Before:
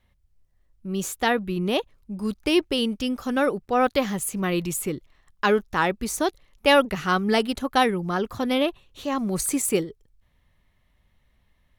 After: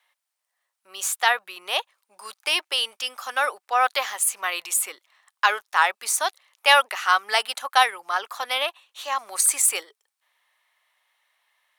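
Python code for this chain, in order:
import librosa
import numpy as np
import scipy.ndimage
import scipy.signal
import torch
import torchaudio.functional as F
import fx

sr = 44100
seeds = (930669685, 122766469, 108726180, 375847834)

y = scipy.signal.sosfilt(scipy.signal.butter(4, 780.0, 'highpass', fs=sr, output='sos'), x)
y = fx.peak_eq(y, sr, hz=8900.0, db=5.5, octaves=0.25)
y = y * librosa.db_to_amplitude(5.0)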